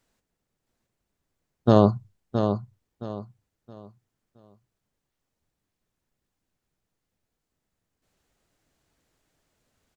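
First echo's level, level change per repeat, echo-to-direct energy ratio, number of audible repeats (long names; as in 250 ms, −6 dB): −7.5 dB, −11.0 dB, −7.0 dB, 3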